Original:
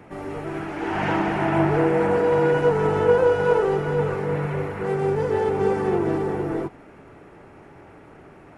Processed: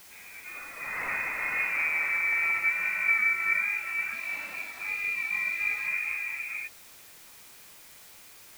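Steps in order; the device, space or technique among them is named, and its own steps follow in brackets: spectral noise reduction 8 dB; scrambled radio voice (band-pass 320–2900 Hz; frequency inversion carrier 2.8 kHz; white noise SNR 20 dB); 4.13–5.87 s: fifteen-band graphic EQ 250 Hz +7 dB, 1.6 kHz -3 dB, 4 kHz +6 dB; trim -7 dB

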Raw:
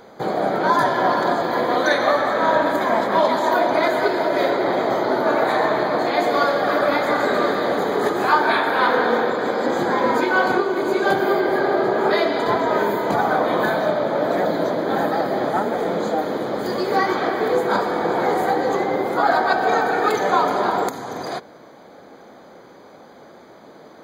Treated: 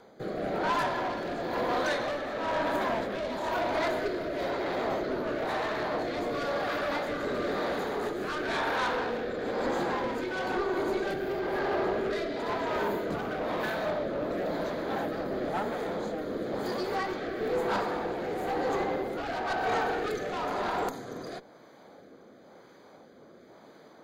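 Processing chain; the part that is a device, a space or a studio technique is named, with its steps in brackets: overdriven rotary cabinet (valve stage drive 18 dB, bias 0.4; rotary cabinet horn 1 Hz); trim -5 dB

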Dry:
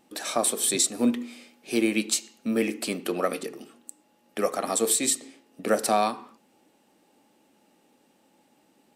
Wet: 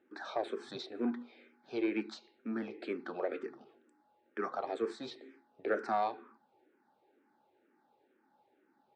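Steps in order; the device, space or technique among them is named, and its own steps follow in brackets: barber-pole phaser into a guitar amplifier (barber-pole phaser -2.1 Hz; saturation -17 dBFS, distortion -19 dB; cabinet simulation 81–3700 Hz, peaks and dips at 180 Hz -8 dB, 380 Hz +9 dB, 850 Hz +6 dB, 1.5 kHz +10 dB, 2.9 kHz -9 dB); trim -8.5 dB

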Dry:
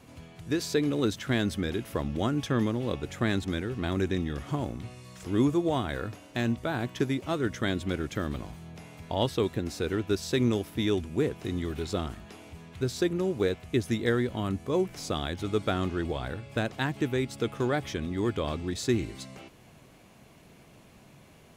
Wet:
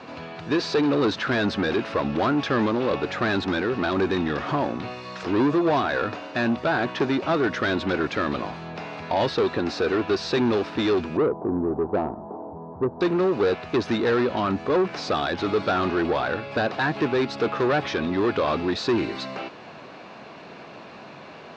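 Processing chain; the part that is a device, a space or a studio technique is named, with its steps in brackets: 11.17–13.01 s: elliptic low-pass 950 Hz, stop band 70 dB; overdrive pedal into a guitar cabinet (overdrive pedal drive 28 dB, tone 7.2 kHz, clips at -10.5 dBFS; cabinet simulation 80–4100 Hz, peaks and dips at 120 Hz -4 dB, 2.1 kHz -7 dB, 3.2 kHz -9 dB); trim -2 dB

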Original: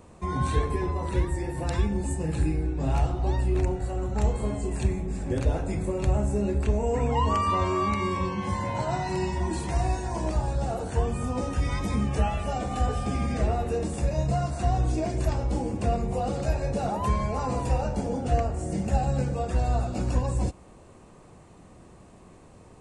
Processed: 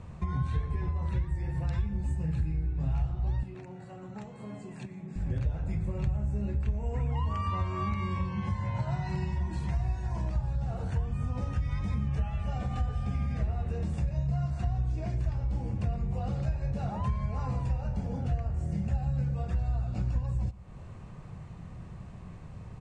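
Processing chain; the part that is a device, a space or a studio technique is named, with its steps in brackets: jukebox (low-pass 5.9 kHz 12 dB/octave; resonant low shelf 210 Hz +11 dB, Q 1.5; compression 3:1, threshold -29 dBFS, peak gain reduction 16.5 dB); 3.43–5.16 s: high-pass 170 Hz 24 dB/octave; peaking EQ 1.8 kHz +4.5 dB 1.8 oct; echo from a far wall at 20 m, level -20 dB; trim -2.5 dB

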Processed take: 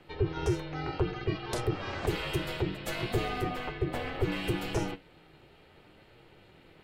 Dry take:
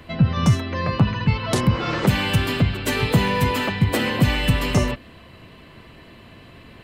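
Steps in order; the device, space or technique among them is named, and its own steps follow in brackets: 3.41–4.32 s: treble shelf 3.9 kHz -11 dB; alien voice (ring modulator 240 Hz; flange 0.65 Hz, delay 8.2 ms, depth 5 ms, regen +72%); trim -5 dB

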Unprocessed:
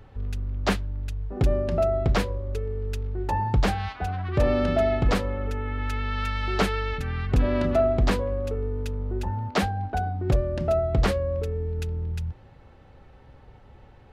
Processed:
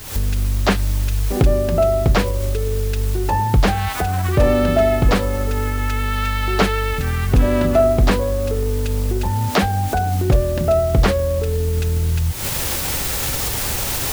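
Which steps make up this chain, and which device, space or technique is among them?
cheap recorder with automatic gain (white noise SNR 21 dB; recorder AGC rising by 72 dB/s); trim +7 dB

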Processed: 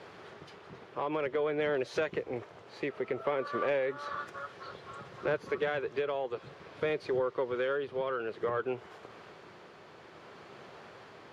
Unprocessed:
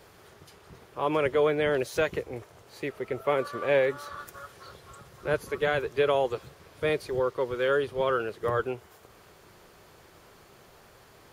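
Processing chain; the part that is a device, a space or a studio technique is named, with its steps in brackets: AM radio (band-pass 150–3600 Hz; compression 5:1, threshold -33 dBFS, peak gain reduction 13 dB; saturation -24 dBFS, distortion -25 dB; tremolo 0.56 Hz, depth 29%); trim +5.5 dB

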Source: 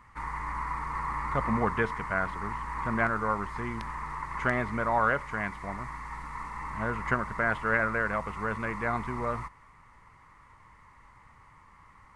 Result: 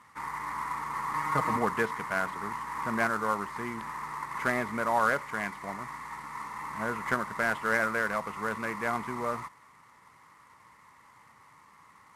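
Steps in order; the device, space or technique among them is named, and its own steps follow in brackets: early wireless headset (high-pass 170 Hz 12 dB/octave; CVSD coder 64 kbps); 1.13–1.56 s: comb 6.4 ms, depth 91%

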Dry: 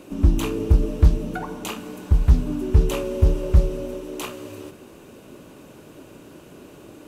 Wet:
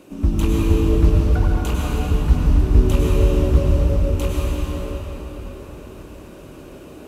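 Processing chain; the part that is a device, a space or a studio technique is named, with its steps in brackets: cathedral (reverberation RT60 5.0 s, pre-delay 92 ms, DRR -5.5 dB); trim -2.5 dB

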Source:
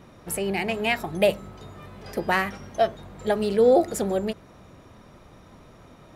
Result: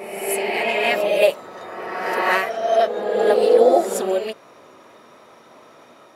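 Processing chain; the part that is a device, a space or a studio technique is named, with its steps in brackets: ghost voice (reverse; reverberation RT60 2.1 s, pre-delay 4 ms, DRR -2 dB; reverse; high-pass 420 Hz 12 dB/octave); trim +2.5 dB

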